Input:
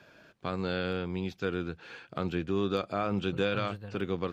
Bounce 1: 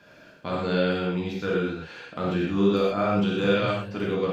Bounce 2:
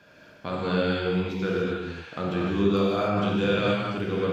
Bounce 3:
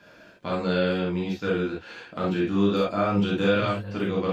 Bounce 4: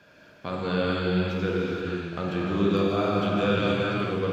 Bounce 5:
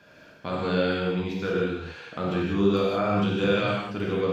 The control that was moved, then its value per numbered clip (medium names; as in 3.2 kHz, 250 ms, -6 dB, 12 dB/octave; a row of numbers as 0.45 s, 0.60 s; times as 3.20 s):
gated-style reverb, gate: 150 ms, 320 ms, 90 ms, 510 ms, 220 ms